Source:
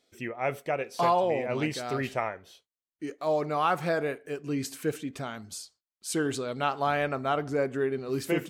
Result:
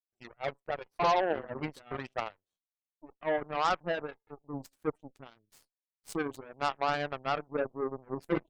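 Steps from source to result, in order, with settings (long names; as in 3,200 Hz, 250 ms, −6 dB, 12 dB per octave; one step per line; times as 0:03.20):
gate on every frequency bin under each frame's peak −15 dB strong
harmonic generator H 6 −42 dB, 7 −17 dB, 8 −29 dB, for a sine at −14 dBFS
level −2 dB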